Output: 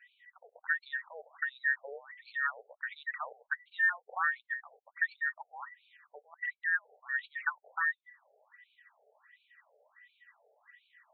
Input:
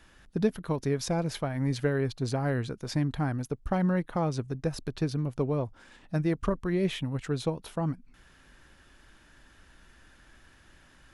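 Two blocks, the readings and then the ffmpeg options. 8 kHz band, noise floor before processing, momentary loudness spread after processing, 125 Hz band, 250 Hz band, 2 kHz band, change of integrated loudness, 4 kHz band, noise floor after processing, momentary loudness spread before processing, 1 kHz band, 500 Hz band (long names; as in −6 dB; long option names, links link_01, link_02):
below −35 dB, −59 dBFS, 15 LU, below −40 dB, below −40 dB, +11.5 dB, −3.5 dB, −13.5 dB, −82 dBFS, 5 LU, −3.0 dB, −21.5 dB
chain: -filter_complex "[0:a]afftfilt=real='real(if(between(b,1,1012),(2*floor((b-1)/92)+1)*92-b,b),0)':imag='imag(if(between(b,1,1012),(2*floor((b-1)/92)+1)*92-b,b),0)*if(between(b,1,1012),-1,1)':win_size=2048:overlap=0.75,acrossover=split=460|1700[link_01][link_02][link_03];[link_03]adynamicsmooth=sensitivity=4:basefreq=4100[link_04];[link_01][link_02][link_04]amix=inputs=3:normalize=0,aresample=32000,aresample=44100,afftfilt=real='re*between(b*sr/1024,570*pow(3200/570,0.5+0.5*sin(2*PI*1.4*pts/sr))/1.41,570*pow(3200/570,0.5+0.5*sin(2*PI*1.4*pts/sr))*1.41)':imag='im*between(b*sr/1024,570*pow(3200/570,0.5+0.5*sin(2*PI*1.4*pts/sr))/1.41,570*pow(3200/570,0.5+0.5*sin(2*PI*1.4*pts/sr))*1.41)':win_size=1024:overlap=0.75"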